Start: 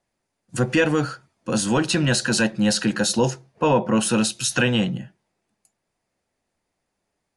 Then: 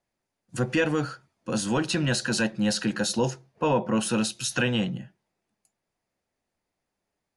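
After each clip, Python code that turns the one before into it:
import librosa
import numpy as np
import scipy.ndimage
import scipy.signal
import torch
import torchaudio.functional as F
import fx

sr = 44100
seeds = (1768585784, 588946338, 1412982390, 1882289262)

y = fx.peak_eq(x, sr, hz=8400.0, db=-3.0, octaves=0.45)
y = F.gain(torch.from_numpy(y), -5.0).numpy()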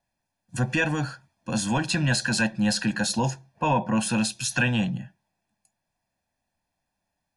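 y = x + 0.69 * np.pad(x, (int(1.2 * sr / 1000.0), 0))[:len(x)]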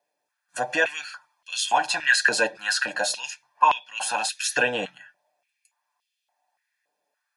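y = x + 0.51 * np.pad(x, (int(6.8 * sr / 1000.0), 0))[:len(x)]
y = fx.filter_held_highpass(y, sr, hz=3.5, low_hz=450.0, high_hz=3100.0)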